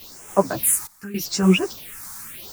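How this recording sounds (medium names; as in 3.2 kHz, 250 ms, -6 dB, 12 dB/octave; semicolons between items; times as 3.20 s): a quantiser's noise floor 6-bit, dither triangular; phasing stages 4, 0.83 Hz, lowest notch 460–4200 Hz; random-step tremolo 3.5 Hz, depth 90%; a shimmering, thickened sound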